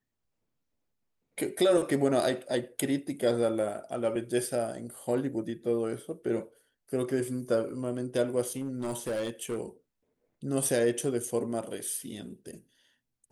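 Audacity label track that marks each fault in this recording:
8.490000	9.590000	clipped -28 dBFS

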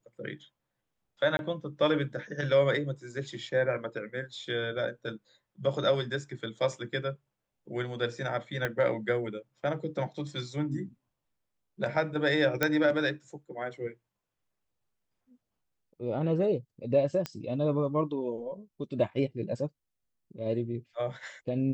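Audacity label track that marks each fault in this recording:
1.370000	1.390000	gap 21 ms
8.650000	8.650000	pop -16 dBFS
12.630000	12.630000	pop -10 dBFS
17.260000	17.260000	pop -18 dBFS

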